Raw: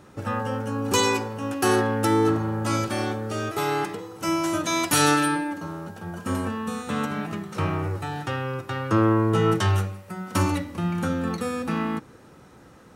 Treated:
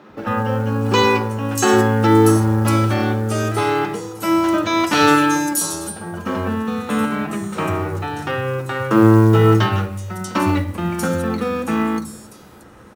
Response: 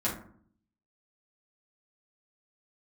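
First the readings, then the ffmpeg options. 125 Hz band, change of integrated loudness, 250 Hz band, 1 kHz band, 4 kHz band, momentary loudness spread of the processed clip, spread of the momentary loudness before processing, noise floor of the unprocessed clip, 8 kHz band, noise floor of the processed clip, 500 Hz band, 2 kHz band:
+8.0 dB, +7.0 dB, +8.0 dB, +6.5 dB, +4.5 dB, 12 LU, 10 LU, -50 dBFS, +4.0 dB, -43 dBFS, +7.5 dB, +6.5 dB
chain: -filter_complex "[0:a]acrossover=split=160|5100[s0][s1][s2];[s0]adelay=100[s3];[s2]adelay=640[s4];[s3][s1][s4]amix=inputs=3:normalize=0,asplit=2[s5][s6];[1:a]atrim=start_sample=2205,lowpass=4800[s7];[s6][s7]afir=irnorm=-1:irlink=0,volume=0.15[s8];[s5][s8]amix=inputs=2:normalize=0,acrusher=bits=8:mode=log:mix=0:aa=0.000001,volume=1.88"

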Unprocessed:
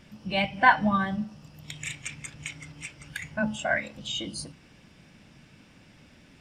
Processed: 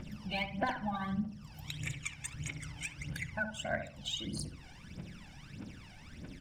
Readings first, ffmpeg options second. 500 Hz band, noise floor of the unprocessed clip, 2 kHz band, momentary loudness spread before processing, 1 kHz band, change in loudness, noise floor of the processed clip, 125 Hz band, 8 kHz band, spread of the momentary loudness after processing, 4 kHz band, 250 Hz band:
-9.0 dB, -56 dBFS, -11.5 dB, 19 LU, -13.5 dB, -11.0 dB, -53 dBFS, -3.0 dB, -4.5 dB, 15 LU, -6.5 dB, -8.0 dB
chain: -filter_complex "[0:a]aeval=exprs='0.668*(cos(1*acos(clip(val(0)/0.668,-1,1)))-cos(1*PI/2))+0.0188*(cos(7*acos(clip(val(0)/0.668,-1,1)))-cos(7*PI/2))':c=same,aphaser=in_gain=1:out_gain=1:delay=1.4:decay=0.78:speed=1.6:type=triangular,acompressor=threshold=0.0112:ratio=2.5,asplit=2[s0][s1];[s1]adelay=68,lowpass=f=920:p=1,volume=0.501,asplit=2[s2][s3];[s3]adelay=68,lowpass=f=920:p=1,volume=0.4,asplit=2[s4][s5];[s5]adelay=68,lowpass=f=920:p=1,volume=0.4,asplit=2[s6][s7];[s7]adelay=68,lowpass=f=920:p=1,volume=0.4,asplit=2[s8][s9];[s9]adelay=68,lowpass=f=920:p=1,volume=0.4[s10];[s2][s4][s6][s8][s10]amix=inputs=5:normalize=0[s11];[s0][s11]amix=inputs=2:normalize=0"

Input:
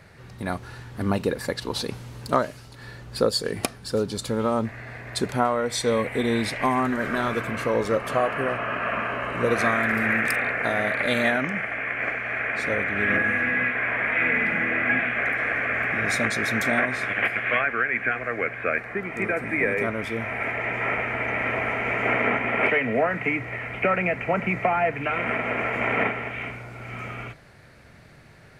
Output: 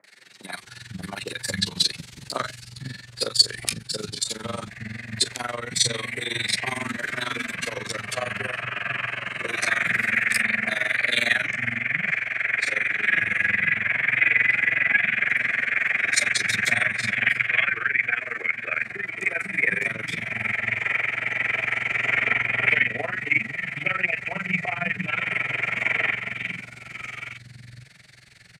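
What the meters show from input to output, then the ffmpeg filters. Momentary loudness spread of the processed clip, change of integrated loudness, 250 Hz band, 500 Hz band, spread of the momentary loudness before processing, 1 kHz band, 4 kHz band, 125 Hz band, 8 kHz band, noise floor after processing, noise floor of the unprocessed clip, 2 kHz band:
14 LU, +1.5 dB, -9.0 dB, -11.0 dB, 10 LU, -7.5 dB, +8.0 dB, -4.0 dB, +8.0 dB, -48 dBFS, -48 dBFS, +2.5 dB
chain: -filter_complex "[0:a]lowshelf=f=140:t=q:w=1.5:g=-7.5,flanger=delay=9.7:depth=9.4:regen=27:speed=0.12:shape=sinusoidal,tremolo=f=22:d=0.889,equalizer=f=125:t=o:w=1:g=9,equalizer=f=250:t=o:w=1:g=-8,equalizer=f=500:t=o:w=1:g=-7,equalizer=f=1000:t=o:w=1:g=-4,equalizer=f=2000:t=o:w=1:g=6,equalizer=f=4000:t=o:w=1:g=8,equalizer=f=8000:t=o:w=1:g=11,acrossover=split=250|1100[s0][s1][s2];[s2]adelay=40[s3];[s0]adelay=500[s4];[s4][s1][s3]amix=inputs=3:normalize=0,volume=1.68"

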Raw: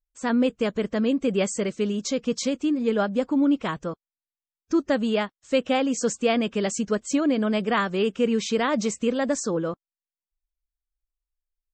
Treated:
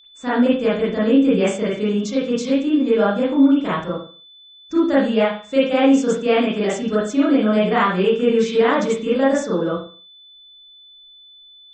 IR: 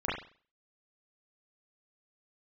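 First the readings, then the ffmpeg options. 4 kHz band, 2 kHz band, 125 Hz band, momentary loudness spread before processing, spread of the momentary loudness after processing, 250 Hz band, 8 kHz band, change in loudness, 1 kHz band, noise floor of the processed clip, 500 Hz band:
+4.0 dB, +5.5 dB, +6.0 dB, 4 LU, 7 LU, +6.5 dB, -3.5 dB, +6.5 dB, +6.5 dB, -46 dBFS, +7.0 dB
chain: -filter_complex "[0:a]aeval=exprs='val(0)+0.00631*sin(2*PI*3500*n/s)':c=same[s0];[1:a]atrim=start_sample=2205,afade=t=out:st=0.4:d=0.01,atrim=end_sample=18081[s1];[s0][s1]afir=irnorm=-1:irlink=0,volume=0.75"

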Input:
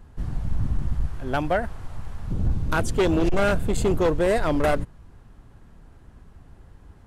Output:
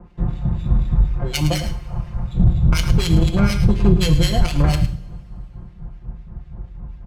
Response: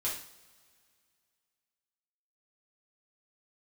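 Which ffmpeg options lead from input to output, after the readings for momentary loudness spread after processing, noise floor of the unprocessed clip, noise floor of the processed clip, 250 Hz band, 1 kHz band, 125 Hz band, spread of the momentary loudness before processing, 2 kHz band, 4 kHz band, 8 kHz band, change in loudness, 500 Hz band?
21 LU, -50 dBFS, -41 dBFS, +6.0 dB, -3.0 dB, +11.0 dB, 13 LU, -1.0 dB, +11.5 dB, +7.0 dB, +5.5 dB, -4.5 dB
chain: -filter_complex "[0:a]acrusher=samples=12:mix=1:aa=0.000001,highshelf=f=6300:g=11,aecho=1:1:5.7:0.81,acrossover=split=240|3000[s0][s1][s2];[s1]acompressor=threshold=0.0398:ratio=6[s3];[s0][s3][s2]amix=inputs=3:normalize=0,highpass=49,acrossover=split=1800[s4][s5];[s4]aeval=exprs='val(0)*(1-1/2+1/2*cos(2*PI*4.1*n/s))':c=same[s6];[s5]aeval=exprs='val(0)*(1-1/2-1/2*cos(2*PI*4.1*n/s))':c=same[s7];[s6][s7]amix=inputs=2:normalize=0,adynamicsmooth=sensitivity=2:basefreq=1600,aecho=1:1:107:0.266,asplit=2[s8][s9];[1:a]atrim=start_sample=2205[s10];[s9][s10]afir=irnorm=-1:irlink=0,volume=0.376[s11];[s8][s11]amix=inputs=2:normalize=0,asubboost=boost=5:cutoff=140,alimiter=level_in=3.98:limit=0.891:release=50:level=0:latency=1,volume=0.631"

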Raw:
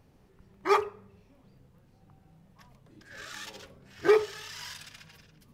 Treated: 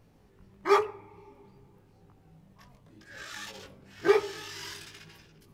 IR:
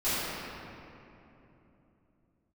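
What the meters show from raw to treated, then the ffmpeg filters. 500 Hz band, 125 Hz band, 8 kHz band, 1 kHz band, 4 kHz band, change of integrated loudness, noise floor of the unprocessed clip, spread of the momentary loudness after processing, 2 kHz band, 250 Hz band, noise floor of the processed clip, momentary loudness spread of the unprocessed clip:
-0.5 dB, +1.0 dB, +0.5 dB, +0.5 dB, +0.5 dB, -0.5 dB, -61 dBFS, 21 LU, 0.0 dB, +1.5 dB, -61 dBFS, 21 LU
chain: -filter_complex "[0:a]flanger=delay=17.5:depth=3.6:speed=0.95,asplit=2[s0][s1];[s1]asplit=3[s2][s3][s4];[s2]bandpass=f=300:t=q:w=8,volume=1[s5];[s3]bandpass=f=870:t=q:w=8,volume=0.501[s6];[s4]bandpass=f=2240:t=q:w=8,volume=0.355[s7];[s5][s6][s7]amix=inputs=3:normalize=0[s8];[1:a]atrim=start_sample=2205,asetrate=52920,aresample=44100[s9];[s8][s9]afir=irnorm=-1:irlink=0,volume=0.106[s10];[s0][s10]amix=inputs=2:normalize=0,volume=1.5"

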